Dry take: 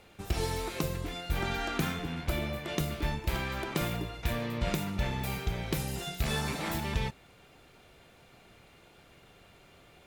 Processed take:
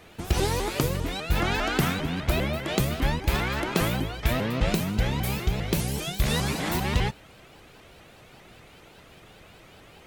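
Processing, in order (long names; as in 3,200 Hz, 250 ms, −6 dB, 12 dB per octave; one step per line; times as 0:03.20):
0:04.66–0:06.72: parametric band 1,200 Hz −3.5 dB 2.2 octaves
pitch modulation by a square or saw wave saw up 5 Hz, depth 250 cents
level +7 dB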